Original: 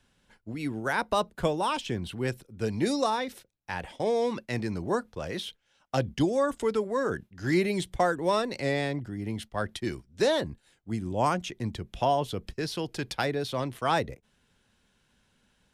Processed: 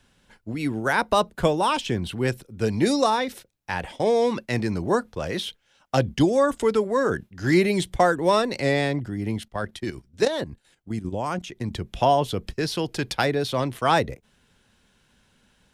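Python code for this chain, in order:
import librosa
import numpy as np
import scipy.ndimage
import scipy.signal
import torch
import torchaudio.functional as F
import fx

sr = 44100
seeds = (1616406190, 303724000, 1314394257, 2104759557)

y = fx.level_steps(x, sr, step_db=11, at=(9.38, 11.71))
y = F.gain(torch.from_numpy(y), 6.0).numpy()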